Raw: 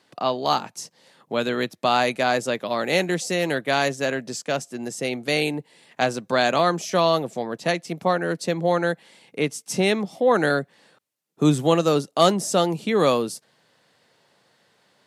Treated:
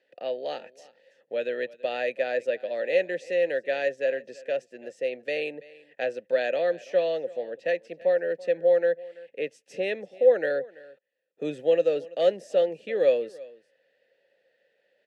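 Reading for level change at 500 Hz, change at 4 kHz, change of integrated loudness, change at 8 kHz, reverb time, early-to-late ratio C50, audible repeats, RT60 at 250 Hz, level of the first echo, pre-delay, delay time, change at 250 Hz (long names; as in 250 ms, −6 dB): −1.0 dB, −14.0 dB, −4.5 dB, below −20 dB, no reverb audible, no reverb audible, 1, no reverb audible, −21.0 dB, no reverb audible, 333 ms, −15.5 dB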